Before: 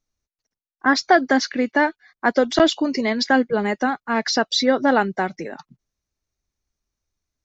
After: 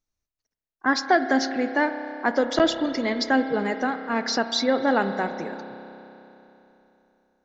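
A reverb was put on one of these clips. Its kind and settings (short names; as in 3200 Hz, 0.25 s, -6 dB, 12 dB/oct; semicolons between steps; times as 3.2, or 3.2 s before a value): spring tank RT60 3.3 s, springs 30 ms, chirp 35 ms, DRR 8.5 dB; gain -4.5 dB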